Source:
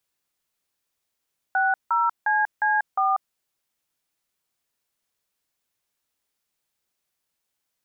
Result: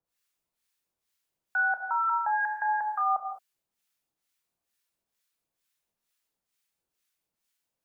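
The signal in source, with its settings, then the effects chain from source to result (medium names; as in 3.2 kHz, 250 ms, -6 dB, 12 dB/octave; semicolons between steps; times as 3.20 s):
DTMF "60CC4", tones 190 ms, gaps 166 ms, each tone -21 dBFS
harmonic tremolo 2.2 Hz, depth 100%, crossover 1.1 kHz; gated-style reverb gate 230 ms flat, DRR 3 dB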